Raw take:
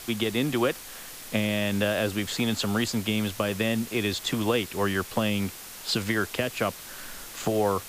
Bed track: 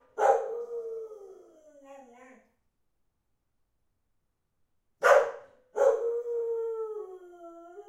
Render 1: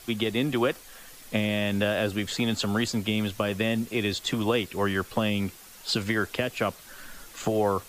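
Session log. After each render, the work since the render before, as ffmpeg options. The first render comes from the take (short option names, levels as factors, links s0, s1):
-af "afftdn=nr=8:nf=-42"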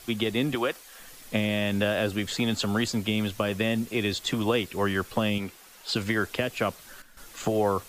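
-filter_complex "[0:a]asettb=1/sr,asplit=3[s0][s1][s2];[s0]atrim=end=0.554[s3];[s1]atrim=start=0.55:end=0.99,asetpts=PTS-STARTPTS,afade=t=in:d=0.004:c=qsin,afade=t=out:st=0.436:d=0.004:c=qsin,lowshelf=f=270:g=-11.5[s4];[s2]atrim=start=0.986[s5];[s3][s4]acrossfade=d=0.004:c1=hsin:c2=qsin[s6];[s6][s5]acrossfade=d=0.004:c1=qsin:c2=hsin,asettb=1/sr,asplit=3[s7][s8][s9];[s7]atrim=end=5.384[s10];[s8]atrim=start=5.38:end=5.96,asetpts=PTS-STARTPTS,afade=t=in:d=0.004:c=qsin,afade=t=out:st=0.576:d=0.004:c=qsin,bass=f=250:g=-8,treble=f=4000:g=-4[s11];[s9]atrim=start=5.956[s12];[s10][s11]acrossfade=d=0.004:c1=hsin:c2=qsin[s13];[s13][s12]acrossfade=d=0.004:c1=qsin:c2=hsin,asplit=3[s14][s15][s16];[s14]atrim=end=7.02,asetpts=PTS-STARTPTS,afade=t=out:st=6.7:d=0.32:c=log:silence=0.251189[s17];[s15]atrim=start=7.02:end=7.17,asetpts=PTS-STARTPTS,volume=0.251[s18];[s16]atrim=start=7.17,asetpts=PTS-STARTPTS,afade=t=in:d=0.32:c=log:silence=0.251189[s19];[s17][s18][s19]concat=n=3:v=0:a=1"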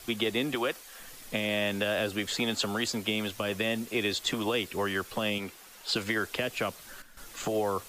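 -filter_complex "[0:a]acrossover=split=280|2300[s0][s1][s2];[s0]acompressor=threshold=0.0112:ratio=6[s3];[s1]alimiter=limit=0.0794:level=0:latency=1:release=127[s4];[s3][s4][s2]amix=inputs=3:normalize=0"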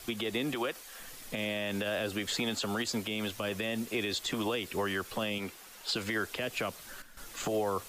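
-af "alimiter=limit=0.0708:level=0:latency=1:release=76"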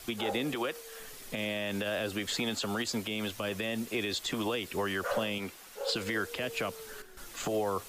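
-filter_complex "[1:a]volume=0.2[s0];[0:a][s0]amix=inputs=2:normalize=0"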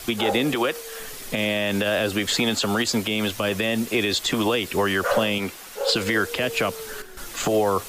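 -af "volume=3.35"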